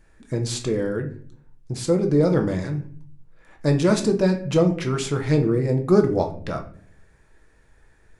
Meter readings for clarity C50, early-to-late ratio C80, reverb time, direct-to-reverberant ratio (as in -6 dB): 11.0 dB, 16.0 dB, 0.50 s, 3.5 dB